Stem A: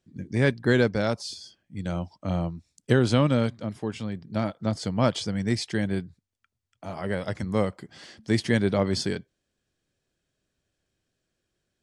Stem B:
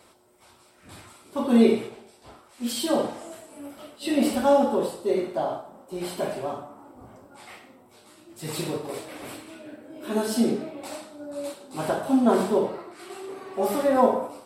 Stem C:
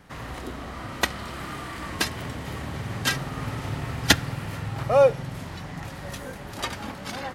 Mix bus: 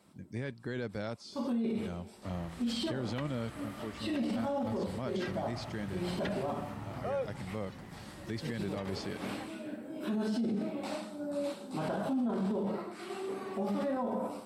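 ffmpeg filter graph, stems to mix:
-filter_complex "[0:a]volume=-11.5dB,asplit=2[a][b];[1:a]equalizer=f=200:w=3.5:g=14.5,volume=-1.5dB,afade=t=in:st=1.35:d=0.65:silence=0.316228[c];[2:a]acrossover=split=3700[d][e];[e]acompressor=threshold=-46dB:ratio=4:attack=1:release=60[f];[d][f]amix=inputs=2:normalize=0,adelay=2150,volume=-13.5dB[g];[b]apad=whole_len=637407[h];[c][h]sidechaincompress=threshold=-41dB:ratio=8:attack=11:release=190[i];[a][i]amix=inputs=2:normalize=0,acrossover=split=5700[j][k];[k]acompressor=threshold=-59dB:ratio=4:attack=1:release=60[l];[j][l]amix=inputs=2:normalize=0,alimiter=limit=-16.5dB:level=0:latency=1:release=36,volume=0dB[m];[g][m]amix=inputs=2:normalize=0,alimiter=level_in=2.5dB:limit=-24dB:level=0:latency=1:release=43,volume=-2.5dB"

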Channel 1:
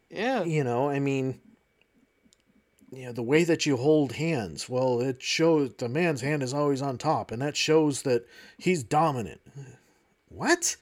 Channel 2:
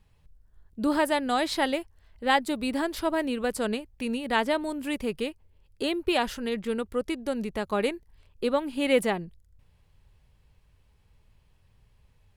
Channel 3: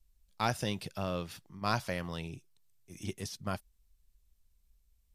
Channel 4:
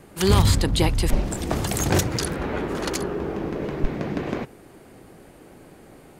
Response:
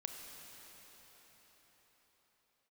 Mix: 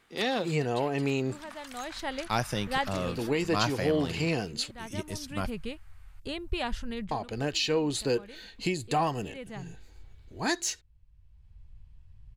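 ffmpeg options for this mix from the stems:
-filter_complex "[0:a]equalizer=f=3.8k:t=o:w=0.58:g=11.5,alimiter=limit=-16.5dB:level=0:latency=1:release=308,volume=-1.5dB,asplit=3[a][b][c];[a]atrim=end=4.71,asetpts=PTS-STARTPTS,afade=t=out:st=4.706:d=0.004:c=hsin[d];[b]atrim=start=4.71:end=7.11,asetpts=PTS-STARTPTS,volume=0[e];[c]atrim=start=7.11,asetpts=PTS-STARTPTS,afade=t=in:d=0.004:c=hsin[f];[d][e][f]concat=n=3:v=0:a=1,asplit=2[g][h];[1:a]asubboost=boost=8.5:cutoff=120,lowpass=8.6k,adelay=450,volume=-6dB[i];[2:a]adelay=1900,volume=2.5dB[j];[3:a]acompressor=threshold=-26dB:ratio=4,highpass=f=1.1k:w=0.5412,highpass=f=1.1k:w=1.3066,highshelf=f=6.9k:g=-12,volume=-8.5dB[k];[h]apad=whole_len=565064[l];[i][l]sidechaincompress=threshold=-44dB:ratio=4:attack=22:release=744[m];[g][m][j][k]amix=inputs=4:normalize=0"

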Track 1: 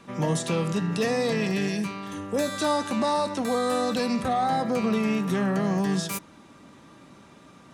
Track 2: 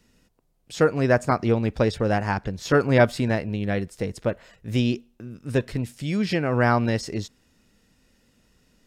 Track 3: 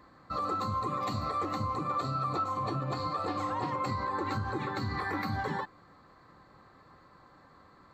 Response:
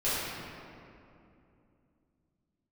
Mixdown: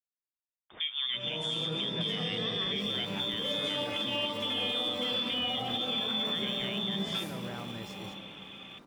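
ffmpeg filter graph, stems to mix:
-filter_complex "[0:a]bandreject=f=50:t=h:w=6,bandreject=f=100:t=h:w=6,bandreject=f=150:t=h:w=6,acompressor=threshold=-35dB:ratio=2,adelay=1050,volume=2.5dB,asplit=2[a][b];[b]volume=-18.5dB[c];[1:a]alimiter=limit=-13dB:level=0:latency=1,aeval=exprs='val(0)*gte(abs(val(0)),0.00794)':c=same,volume=-6dB,asplit=3[d][e][f];[e]volume=-13.5dB[g];[2:a]acrusher=samples=27:mix=1:aa=0.000001,highpass=f=390:p=1,adelay=2450,volume=-17.5dB,asplit=3[h][i][j];[i]volume=-7.5dB[k];[j]volume=-11.5dB[l];[f]apad=whole_len=387448[m];[a][m]sidechaincompress=threshold=-32dB:ratio=8:attack=16:release=250[n];[n][d]amix=inputs=2:normalize=0,lowpass=f=3.1k:t=q:w=0.5098,lowpass=f=3.1k:t=q:w=0.6013,lowpass=f=3.1k:t=q:w=0.9,lowpass=f=3.1k:t=q:w=2.563,afreqshift=-3700,alimiter=limit=-22.5dB:level=0:latency=1:release=263,volume=0dB[o];[3:a]atrim=start_sample=2205[p];[c][k]amix=inputs=2:normalize=0[q];[q][p]afir=irnorm=-1:irlink=0[r];[g][l]amix=inputs=2:normalize=0,aecho=0:1:868:1[s];[h][o][r][s]amix=inputs=4:normalize=0,alimiter=limit=-23dB:level=0:latency=1:release=71"

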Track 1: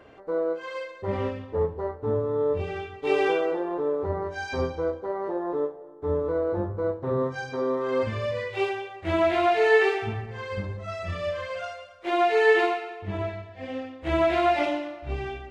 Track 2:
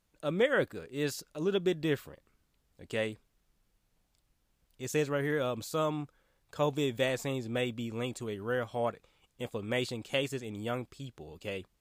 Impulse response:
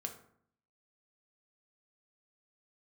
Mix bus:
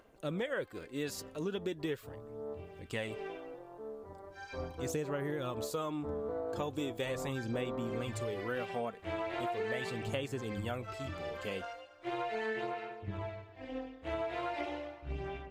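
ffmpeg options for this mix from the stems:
-filter_complex "[0:a]acompressor=mode=upward:threshold=-40dB:ratio=2.5,tremolo=f=220:d=0.621,volume=-7.5dB,afade=t=in:st=4.16:d=0.76:silence=0.281838[a];[1:a]volume=-1dB[b];[a][b]amix=inputs=2:normalize=0,aphaser=in_gain=1:out_gain=1:delay=4.5:decay=0.37:speed=0.39:type=sinusoidal,acompressor=threshold=-33dB:ratio=6"

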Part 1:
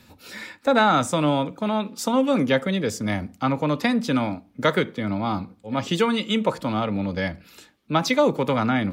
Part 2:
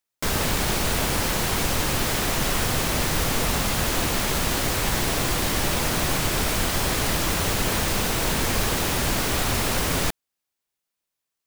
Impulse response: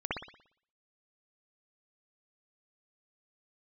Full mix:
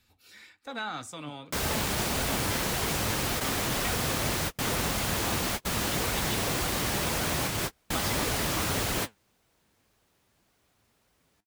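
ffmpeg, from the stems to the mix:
-filter_complex "[0:a]equalizer=f=410:w=0.38:g=-9.5,aecho=1:1:2.6:0.35,volume=-7.5dB,asplit=2[a][b];[1:a]highpass=50,adelay=1300,volume=-0.5dB[c];[b]apad=whole_len=562805[d];[c][d]sidechaingate=range=-41dB:threshold=-58dB:ratio=16:detection=peak[e];[a][e]amix=inputs=2:normalize=0,flanger=delay=1.3:depth=8.7:regen=69:speed=1.8:shape=sinusoidal"

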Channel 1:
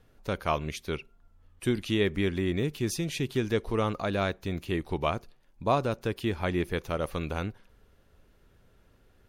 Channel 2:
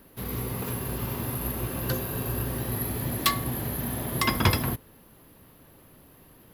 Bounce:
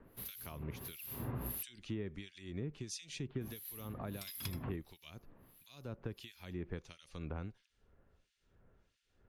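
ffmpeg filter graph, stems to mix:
-filter_complex "[0:a]lowpass=f=7.8k:w=0.5412,lowpass=f=7.8k:w=1.3066,acompressor=threshold=-28dB:ratio=6,volume=-5dB,asplit=2[a][b];[1:a]volume=-6.5dB,asplit=3[c][d][e];[c]atrim=end=1.63,asetpts=PTS-STARTPTS,afade=t=out:st=1.626:d=0.004:c=hsin[f];[d]atrim=start=1.63:end=3.41,asetpts=PTS-STARTPTS,volume=0[g];[e]atrim=start=3.41,asetpts=PTS-STARTPTS,afade=t=in:d=0.004:c=hsin[h];[f][g][h]concat=n=3:v=0:a=1[i];[b]apad=whole_len=288281[j];[i][j]sidechaincompress=threshold=-44dB:ratio=8:attack=8.1:release=258[k];[a][k]amix=inputs=2:normalize=0,equalizer=f=13k:t=o:w=0.88:g=5.5,acrossover=split=260|3000[l][m][n];[m]acompressor=threshold=-43dB:ratio=6[o];[l][o][n]amix=inputs=3:normalize=0,acrossover=split=2100[p][q];[p]aeval=exprs='val(0)*(1-1/2+1/2*cos(2*PI*1.5*n/s))':c=same[r];[q]aeval=exprs='val(0)*(1-1/2-1/2*cos(2*PI*1.5*n/s))':c=same[s];[r][s]amix=inputs=2:normalize=0"

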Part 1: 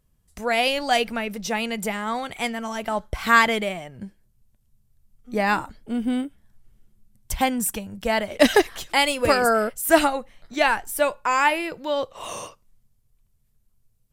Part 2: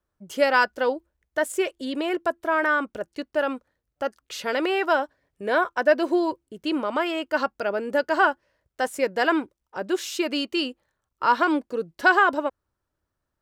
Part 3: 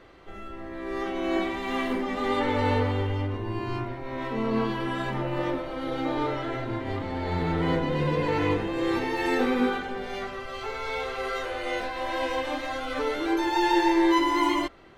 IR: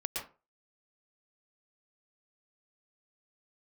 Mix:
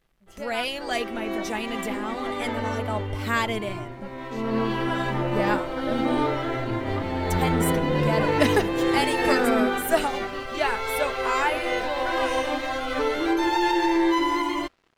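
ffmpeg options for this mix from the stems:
-filter_complex "[0:a]aecho=1:1:4.7:0.4,volume=-7dB[a];[1:a]volume=-17dB[b];[2:a]alimiter=limit=-17dB:level=0:latency=1:release=105,dynaudnorm=f=110:g=13:m=6dB,aeval=exprs='sgn(val(0))*max(abs(val(0))-0.00355,0)':c=same,volume=-2dB,afade=t=in:st=4.29:d=0.47:silence=0.446684[c];[a][b][c]amix=inputs=3:normalize=0"

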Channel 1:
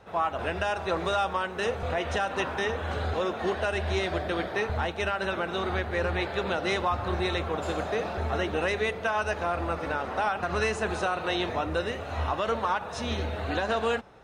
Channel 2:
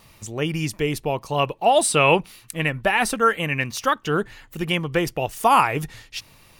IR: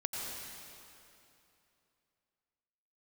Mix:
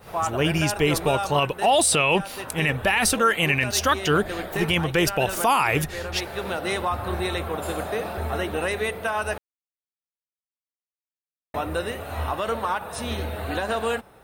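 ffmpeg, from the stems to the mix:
-filter_complex "[0:a]aexciter=amount=5.5:drive=8.9:freq=8.9k,volume=1.5dB,asplit=3[a][b][c];[a]atrim=end=9.38,asetpts=PTS-STARTPTS,afade=t=out:st=9.376:d=0.004:c=hsin[d];[b]atrim=start=9.38:end=11.54,asetpts=PTS-STARTPTS,volume=0[e];[c]atrim=start=11.54,asetpts=PTS-STARTPTS,afade=t=in:d=0.004:c=hsin[f];[d][e][f]concat=n=3:v=0:a=1[g];[1:a]adynamicequalizer=threshold=0.0316:dfrequency=2000:dqfactor=0.7:tfrequency=2000:tqfactor=0.7:attack=5:release=100:ratio=0.375:range=3:mode=boostabove:tftype=highshelf,volume=2dB,asplit=2[h][i];[i]apad=whole_len=627930[j];[g][j]sidechaincompress=threshold=-17dB:ratio=6:attack=16:release=1280[k];[k][h]amix=inputs=2:normalize=0,alimiter=limit=-10.5dB:level=0:latency=1:release=19"

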